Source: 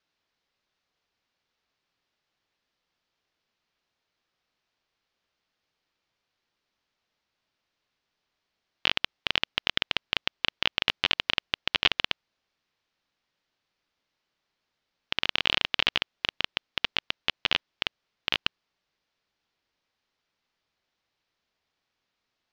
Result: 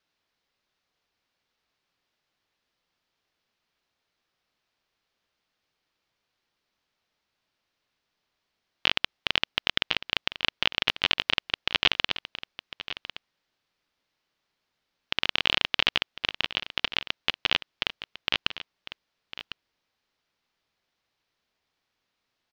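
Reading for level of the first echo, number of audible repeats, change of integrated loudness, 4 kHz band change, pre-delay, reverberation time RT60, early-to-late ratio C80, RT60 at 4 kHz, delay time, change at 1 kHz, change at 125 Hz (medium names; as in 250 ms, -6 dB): -13.5 dB, 1, +1.0 dB, +1.0 dB, no reverb, no reverb, no reverb, no reverb, 1052 ms, +1.0 dB, +1.0 dB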